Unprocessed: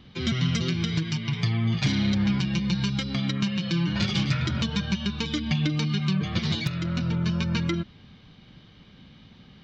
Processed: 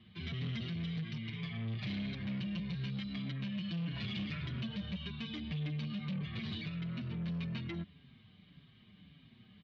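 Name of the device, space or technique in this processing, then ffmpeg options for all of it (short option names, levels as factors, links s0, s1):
barber-pole flanger into a guitar amplifier: -filter_complex "[0:a]asplit=2[s0][s1];[s1]adelay=5.9,afreqshift=-1.7[s2];[s0][s2]amix=inputs=2:normalize=1,asoftclip=type=tanh:threshold=0.0355,highpass=78,equalizer=f=320:t=q:w=4:g=-5,equalizer=f=510:t=q:w=4:g=-10,equalizer=f=860:t=q:w=4:g=-10,equalizer=f=1400:t=q:w=4:g=-7,lowpass=f=3700:w=0.5412,lowpass=f=3700:w=1.3066,volume=0.596"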